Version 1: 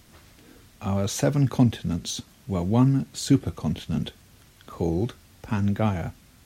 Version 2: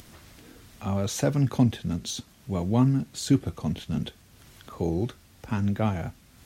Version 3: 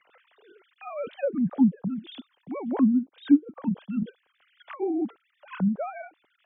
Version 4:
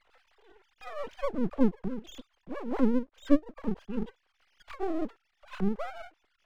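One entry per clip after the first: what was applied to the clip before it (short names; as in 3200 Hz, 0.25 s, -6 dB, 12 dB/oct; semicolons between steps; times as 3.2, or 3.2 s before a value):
upward compressor, threshold -41 dBFS; gain -2 dB
sine-wave speech; treble ducked by the level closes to 560 Hz, closed at -21.5 dBFS
half-wave rectifier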